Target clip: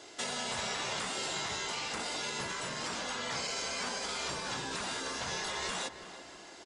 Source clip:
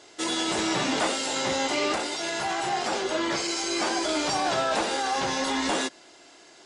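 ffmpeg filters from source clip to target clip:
-filter_complex "[0:a]acrossover=split=590|5300[a][b][c];[a]acompressor=threshold=-33dB:ratio=4[d];[b]acompressor=threshold=-36dB:ratio=4[e];[c]acompressor=threshold=-44dB:ratio=4[f];[d][e][f]amix=inputs=3:normalize=0,afftfilt=real='re*lt(hypot(re,im),0.0708)':imag='im*lt(hypot(re,im),0.0708)':win_size=1024:overlap=0.75,asplit=2[g][h];[h]adelay=332,lowpass=f=2.6k:p=1,volume=-12dB,asplit=2[i][j];[j]adelay=332,lowpass=f=2.6k:p=1,volume=0.53,asplit=2[k][l];[l]adelay=332,lowpass=f=2.6k:p=1,volume=0.53,asplit=2[m][n];[n]adelay=332,lowpass=f=2.6k:p=1,volume=0.53,asplit=2[o][p];[p]adelay=332,lowpass=f=2.6k:p=1,volume=0.53,asplit=2[q][r];[r]adelay=332,lowpass=f=2.6k:p=1,volume=0.53[s];[g][i][k][m][o][q][s]amix=inputs=7:normalize=0"

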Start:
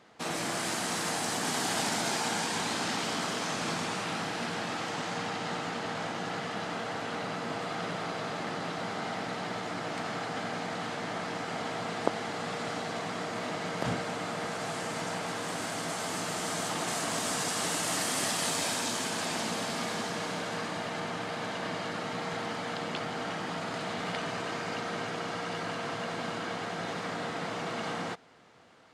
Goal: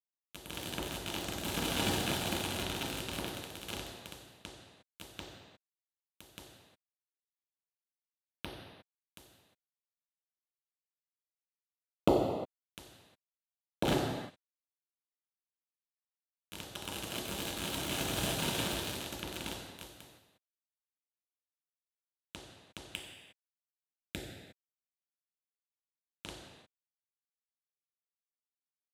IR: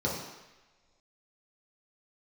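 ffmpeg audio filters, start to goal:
-filter_complex "[0:a]acrusher=bits=3:mix=0:aa=0.000001[a];[1:a]atrim=start_sample=2205,afade=t=out:st=0.29:d=0.01,atrim=end_sample=13230,asetrate=29106,aresample=44100[b];[a][b]afir=irnorm=-1:irlink=0,volume=-7.5dB"

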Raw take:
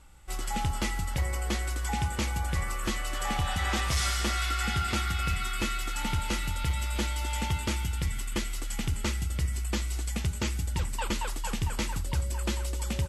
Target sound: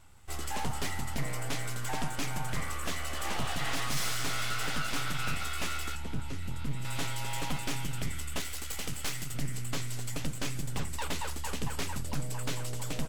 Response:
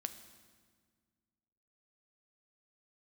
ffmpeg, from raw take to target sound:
-filter_complex "[0:a]asettb=1/sr,asplit=3[a][b][c];[a]atrim=end=5.954[d];[b]atrim=start=5.95:end=6.85,asetpts=PTS-STARTPTS,afade=t=in:d=0.004:c=qsin,afade=t=out:st=0.896:d=0.004:c=qsin,acrossover=split=220[e][f];[f]acompressor=threshold=-48dB:ratio=3[g];[e][g]amix=inputs=2:normalize=0[h];[c]atrim=start=6.846[i];[d][h]acrossfade=d=0.004:c1=hsin:c2=qsin[j];[j][i]acrossfade=d=0.004:c1=qsin:c2=hsin,asettb=1/sr,asplit=3[k][l][m];[k]atrim=end=8.404[n];[l]atrim=start=8.4:end=9.34,asetpts=PTS-STARTPTS,afade=t=in:d=0.004:c=qsin,afade=t=out:st=0.936:d=0.004:c=qsin,tiltshelf=f=970:g=-4[o];[m]atrim=start=9.336[p];[n][o]acrossfade=d=0.004:c1=hsin:c2=qsin[q];[q][p]acrossfade=d=0.004:c1=qsin:c2=hsin,aeval=exprs='abs(val(0))':c=same,volume=-1dB"

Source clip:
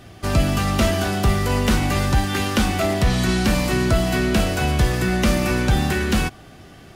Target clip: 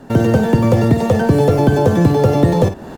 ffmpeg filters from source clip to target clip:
-filter_complex "[0:a]aecho=1:1:120:0.266,asplit=2[a][b];[b]acrusher=samples=14:mix=1:aa=0.000001:lfo=1:lforange=22.4:lforate=1.4,volume=-10dB[c];[a][c]amix=inputs=2:normalize=0,dynaudnorm=f=180:g=5:m=13.5dB,tiltshelf=f=700:g=7.5,asetrate=103194,aresample=44100,acrossover=split=890|2200[d][e][f];[d]acompressor=threshold=-4dB:ratio=4[g];[e]acompressor=threshold=-29dB:ratio=4[h];[f]acompressor=threshold=-31dB:ratio=4[i];[g][h][i]amix=inputs=3:normalize=0,volume=-4dB"

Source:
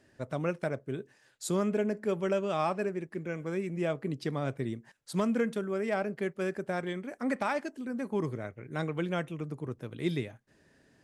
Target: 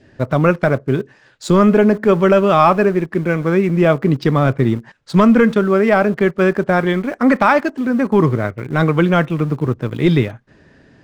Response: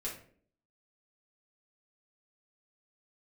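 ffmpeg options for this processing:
-filter_complex "[0:a]lowpass=4.5k,asplit=2[a][b];[b]aeval=exprs='val(0)*gte(abs(val(0)),0.00794)':c=same,volume=-9dB[c];[a][c]amix=inputs=2:normalize=0,lowshelf=f=250:g=5.5,apsyclip=18.5dB,adynamicequalizer=threshold=0.0398:dfrequency=1200:dqfactor=1.7:tfrequency=1200:tqfactor=1.7:attack=5:release=100:ratio=0.375:range=3:mode=boostabove:tftype=bell,volume=-5dB"

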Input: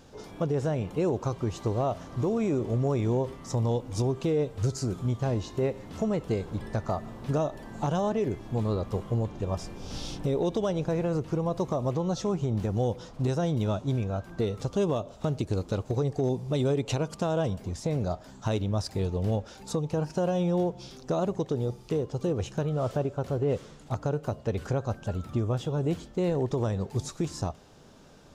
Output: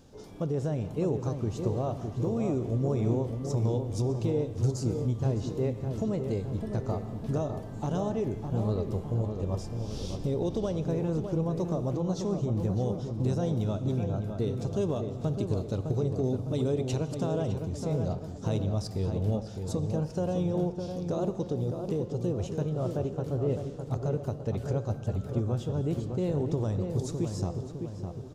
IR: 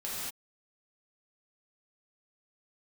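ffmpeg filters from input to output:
-filter_complex "[0:a]equalizer=f=1.6k:t=o:w=2.8:g=-7.5,asplit=2[a][b];[b]adelay=608,lowpass=f=1.9k:p=1,volume=-6dB,asplit=2[c][d];[d]adelay=608,lowpass=f=1.9k:p=1,volume=0.55,asplit=2[e][f];[f]adelay=608,lowpass=f=1.9k:p=1,volume=0.55,asplit=2[g][h];[h]adelay=608,lowpass=f=1.9k:p=1,volume=0.55,asplit=2[i][j];[j]adelay=608,lowpass=f=1.9k:p=1,volume=0.55,asplit=2[k][l];[l]adelay=608,lowpass=f=1.9k:p=1,volume=0.55,asplit=2[m][n];[n]adelay=608,lowpass=f=1.9k:p=1,volume=0.55[o];[a][c][e][g][i][k][m][o]amix=inputs=8:normalize=0,asplit=2[p][q];[1:a]atrim=start_sample=2205,lowpass=6.6k[r];[q][r]afir=irnorm=-1:irlink=0,volume=-14.5dB[s];[p][s]amix=inputs=2:normalize=0,volume=-2dB"

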